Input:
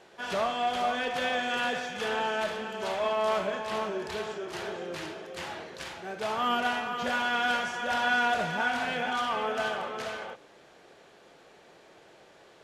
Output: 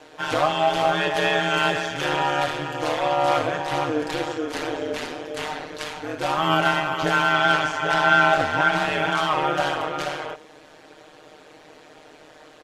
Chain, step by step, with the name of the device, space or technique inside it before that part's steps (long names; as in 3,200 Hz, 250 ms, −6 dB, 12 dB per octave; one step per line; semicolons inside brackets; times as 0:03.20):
0:07.33–0:08.77: high-shelf EQ 11,000 Hz −10 dB
ring-modulated robot voice (ring modulation 76 Hz; comb filter 6.5 ms)
level +9 dB